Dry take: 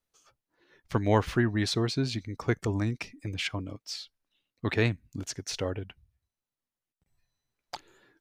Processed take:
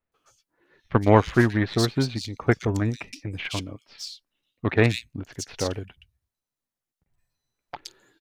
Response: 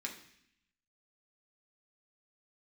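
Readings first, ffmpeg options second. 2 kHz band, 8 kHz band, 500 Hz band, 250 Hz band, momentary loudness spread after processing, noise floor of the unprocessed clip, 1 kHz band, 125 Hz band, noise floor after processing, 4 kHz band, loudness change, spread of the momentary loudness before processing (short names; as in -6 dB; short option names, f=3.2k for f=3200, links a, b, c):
+5.5 dB, +3.0 dB, +6.5 dB, +6.0 dB, 19 LU, under -85 dBFS, +7.5 dB, +5.5 dB, under -85 dBFS, +2.0 dB, +6.0 dB, 17 LU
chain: -filter_complex "[0:a]acontrast=60,aeval=exprs='0.596*(cos(1*acos(clip(val(0)/0.596,-1,1)))-cos(1*PI/2))+0.0422*(cos(3*acos(clip(val(0)/0.596,-1,1)))-cos(3*PI/2))+0.00841*(cos(6*acos(clip(val(0)/0.596,-1,1)))-cos(6*PI/2))+0.0335*(cos(7*acos(clip(val(0)/0.596,-1,1)))-cos(7*PI/2))':c=same,acrossover=split=2900[a][b];[b]adelay=120[c];[a][c]amix=inputs=2:normalize=0,volume=3.5dB"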